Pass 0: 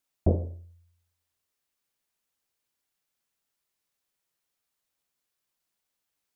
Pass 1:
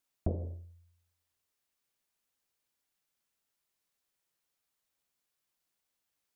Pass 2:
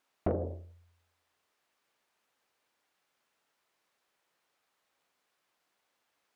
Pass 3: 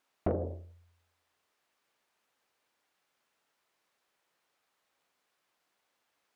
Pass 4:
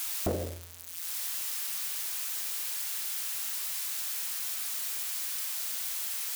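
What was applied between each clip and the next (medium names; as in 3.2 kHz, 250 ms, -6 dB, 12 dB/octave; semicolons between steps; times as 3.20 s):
compression 10:1, threshold -26 dBFS, peak gain reduction 10 dB; trim -1.5 dB
overdrive pedal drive 23 dB, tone 1.1 kHz, clips at -18 dBFS
no audible change
zero-crossing glitches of -27 dBFS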